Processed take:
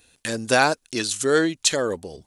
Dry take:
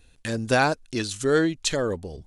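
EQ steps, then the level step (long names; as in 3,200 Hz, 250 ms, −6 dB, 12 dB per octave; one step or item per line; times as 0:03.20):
high-pass filter 280 Hz 6 dB per octave
high-shelf EQ 6,300 Hz +8 dB
+3.0 dB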